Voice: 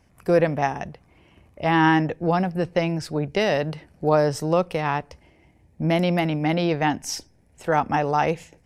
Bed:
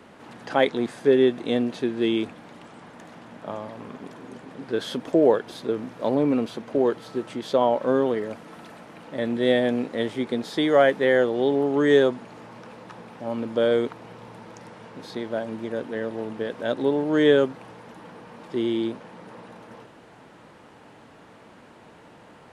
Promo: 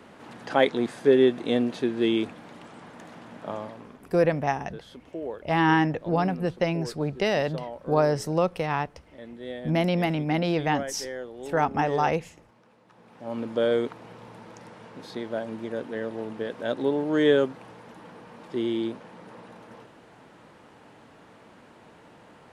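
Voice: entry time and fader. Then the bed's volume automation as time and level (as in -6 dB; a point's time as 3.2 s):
3.85 s, -3.0 dB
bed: 3.63 s -0.5 dB
4.21 s -16.5 dB
12.85 s -16.5 dB
13.37 s -2.5 dB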